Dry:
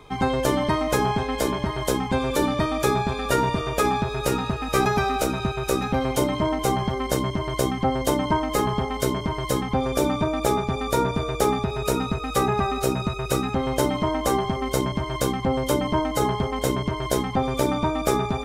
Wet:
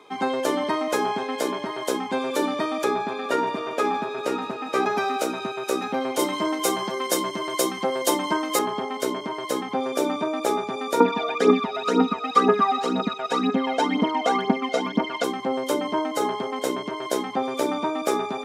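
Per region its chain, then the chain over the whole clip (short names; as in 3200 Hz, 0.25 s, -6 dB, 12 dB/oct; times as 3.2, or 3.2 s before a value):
2.84–4.97 LPF 3400 Hz 6 dB/oct + multi-head echo 80 ms, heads second and third, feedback 63%, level -21 dB
6.19–8.59 HPF 120 Hz + high shelf 4200 Hz +10.5 dB + comb 5.8 ms, depth 52%
11–15.24 LPF 4100 Hz + phaser 2 Hz, delay 1.6 ms, feedback 66% + comb 4.2 ms, depth 83%
whole clip: HPF 240 Hz 24 dB/oct; high shelf 12000 Hz -8 dB; gain -1 dB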